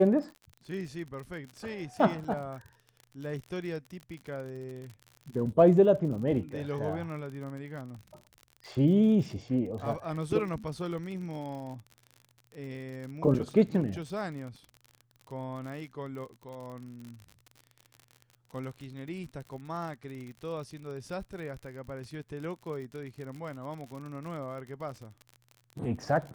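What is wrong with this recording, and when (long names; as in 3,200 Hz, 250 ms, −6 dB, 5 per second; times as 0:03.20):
surface crackle 56 per second −39 dBFS
0:02.24–0:02.25: drop-out 5.1 ms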